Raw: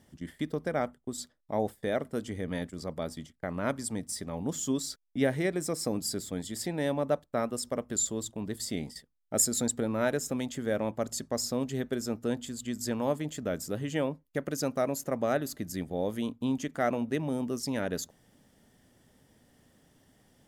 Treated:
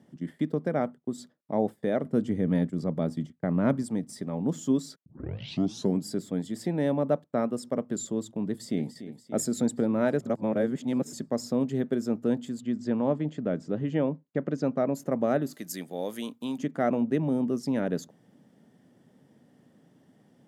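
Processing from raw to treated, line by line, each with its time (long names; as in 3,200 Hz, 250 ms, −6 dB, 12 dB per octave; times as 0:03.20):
0:02.03–0:03.83: low-shelf EQ 240 Hz +8.5 dB
0:05.06: tape start 0.98 s
0:08.48–0:08.91: delay throw 290 ms, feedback 70%, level −13 dB
0:10.20–0:11.13: reverse
0:12.60–0:14.95: high-frequency loss of the air 120 metres
0:15.53–0:16.58: spectral tilt +4.5 dB per octave
whole clip: high-pass filter 150 Hz 24 dB per octave; spectral tilt −3 dB per octave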